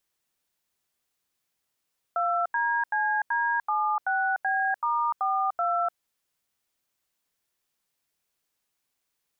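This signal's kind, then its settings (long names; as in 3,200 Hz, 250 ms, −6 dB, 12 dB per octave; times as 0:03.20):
touch tones "2DCD76B*42", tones 297 ms, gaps 84 ms, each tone −25.5 dBFS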